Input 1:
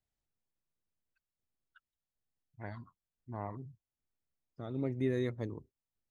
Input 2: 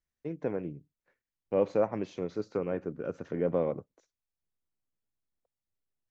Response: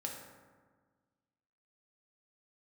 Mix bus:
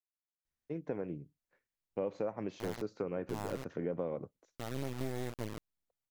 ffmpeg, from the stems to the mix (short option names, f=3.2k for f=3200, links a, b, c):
-filter_complex "[0:a]acrusher=bits=4:dc=4:mix=0:aa=0.000001,volume=2dB[a];[1:a]adelay=450,volume=-2.5dB[b];[a][b]amix=inputs=2:normalize=0,acompressor=threshold=-32dB:ratio=6"